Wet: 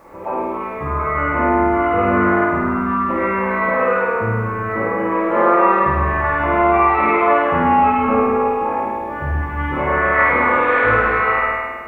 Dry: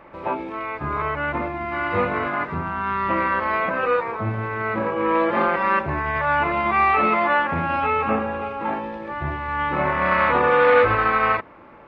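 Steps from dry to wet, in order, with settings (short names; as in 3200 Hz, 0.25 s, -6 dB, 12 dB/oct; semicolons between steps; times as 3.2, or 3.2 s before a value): formant sharpening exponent 1.5; flutter echo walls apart 8.9 m, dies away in 1.5 s; Schroeder reverb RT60 0.91 s, combs from 28 ms, DRR -0.5 dB; bit-crush 10-bit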